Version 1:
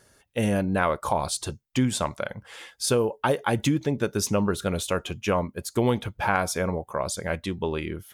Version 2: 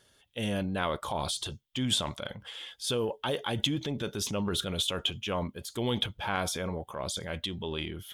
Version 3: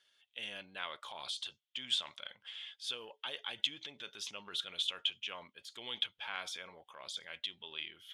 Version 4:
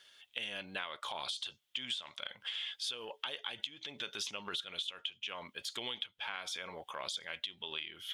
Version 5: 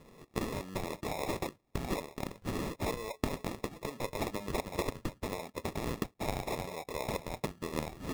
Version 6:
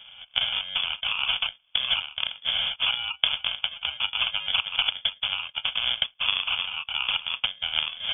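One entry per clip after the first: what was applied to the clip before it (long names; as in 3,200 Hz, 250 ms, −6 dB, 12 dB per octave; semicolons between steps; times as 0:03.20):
transient designer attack −4 dB, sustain +7 dB; parametric band 3,300 Hz +15 dB 0.45 octaves; level −7.5 dB
resonant band-pass 2,800 Hz, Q 1.2; level −3 dB
downward compressor 12 to 1, threshold −47 dBFS, peak gain reduction 20.5 dB; level +11 dB
decimation without filtering 29×; level +5 dB
voice inversion scrambler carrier 3,400 Hz; level +9 dB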